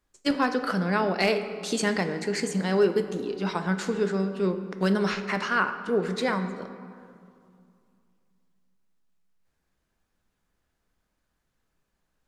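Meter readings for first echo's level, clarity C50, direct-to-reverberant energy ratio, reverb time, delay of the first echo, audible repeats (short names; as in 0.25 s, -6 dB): none, 10.0 dB, 8.0 dB, 2.4 s, none, none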